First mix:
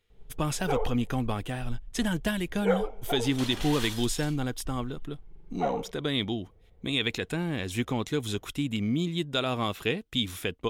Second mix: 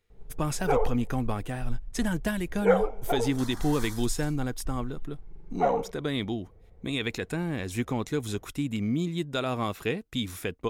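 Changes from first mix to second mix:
first sound +4.5 dB
second sound: add phaser with its sweep stopped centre 1,100 Hz, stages 4
master: add parametric band 3,200 Hz −7.5 dB 0.6 octaves

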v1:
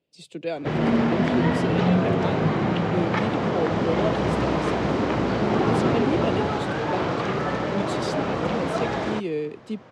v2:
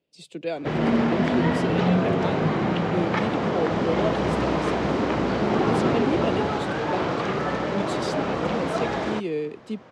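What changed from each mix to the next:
master: add parametric band 110 Hz −4 dB 0.73 octaves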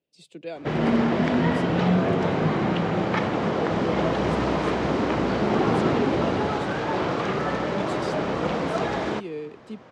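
speech −6.0 dB

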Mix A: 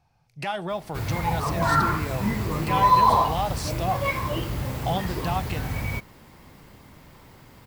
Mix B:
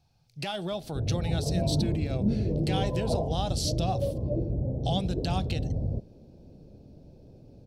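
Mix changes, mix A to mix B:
speech: add octave-band graphic EQ 1,000/2,000/4,000 Hz −9/−8/+7 dB
background: add Butterworth low-pass 640 Hz 48 dB per octave

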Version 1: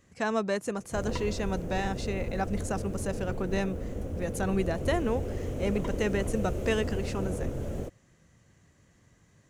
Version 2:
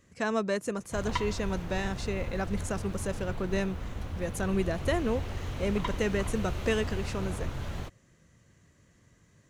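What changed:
speech: add parametric band 790 Hz −7 dB 0.22 octaves
background: add graphic EQ with 10 bands 250 Hz −5 dB, 500 Hz −12 dB, 1,000 Hz +10 dB, 2,000 Hz +5 dB, 4,000 Hz +12 dB, 8,000 Hz −4 dB

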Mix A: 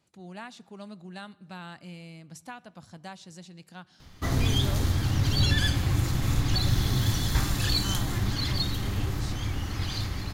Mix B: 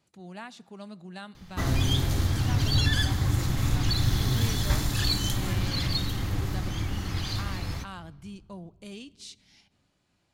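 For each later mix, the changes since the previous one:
background: entry −2.65 s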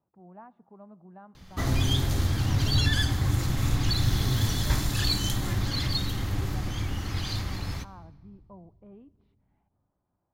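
speech: add transistor ladder low-pass 1,200 Hz, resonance 35%

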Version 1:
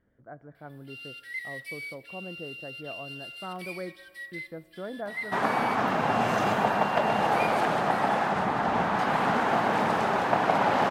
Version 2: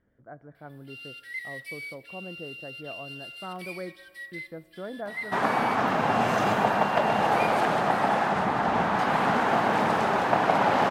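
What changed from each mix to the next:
second sound: send +7.5 dB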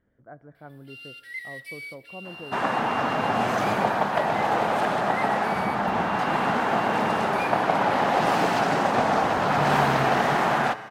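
second sound: entry −2.80 s

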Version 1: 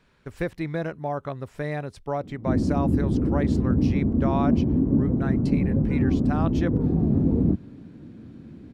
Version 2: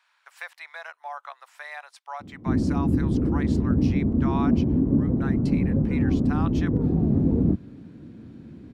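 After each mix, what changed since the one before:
speech: add Butterworth high-pass 800 Hz 36 dB per octave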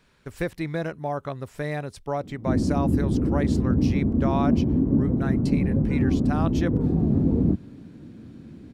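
speech: remove Butterworth high-pass 800 Hz 36 dB per octave
master: add high-shelf EQ 4,800 Hz +8.5 dB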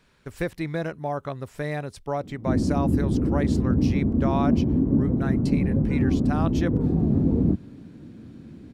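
nothing changed

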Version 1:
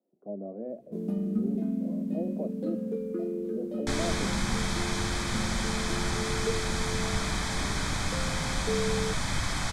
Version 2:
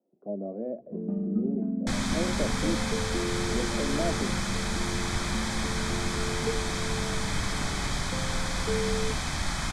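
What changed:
speech +3.5 dB
first sound: add low-pass filter 1,100 Hz 12 dB per octave
second sound: entry −2.00 s

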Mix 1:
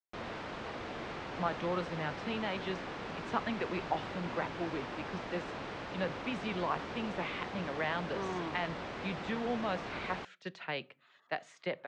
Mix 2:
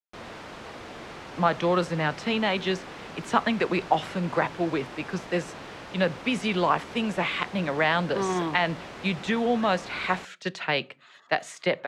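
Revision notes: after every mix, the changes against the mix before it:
speech +11.0 dB
master: remove high-frequency loss of the air 100 metres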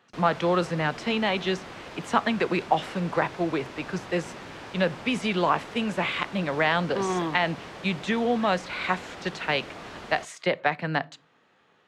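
speech: entry −1.20 s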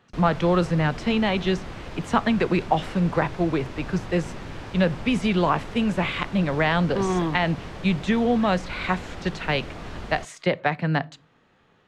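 master: remove high-pass filter 370 Hz 6 dB per octave

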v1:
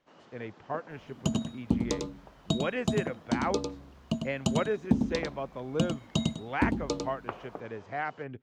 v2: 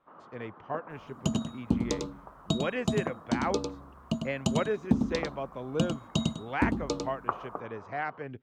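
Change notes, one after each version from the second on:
first sound: add low-pass with resonance 1,200 Hz, resonance Q 3.6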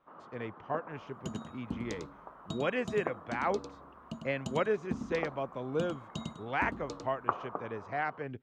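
second sound −11.5 dB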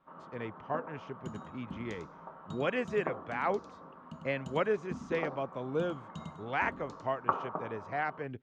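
second sound −9.5 dB
reverb: on, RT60 0.55 s

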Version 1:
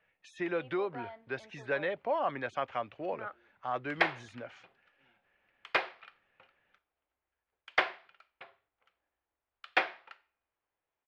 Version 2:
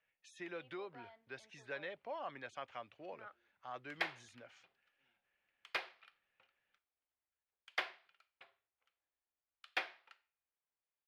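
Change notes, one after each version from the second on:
master: add first-order pre-emphasis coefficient 0.8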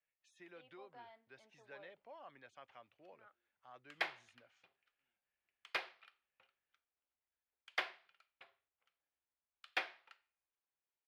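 speech −11.0 dB

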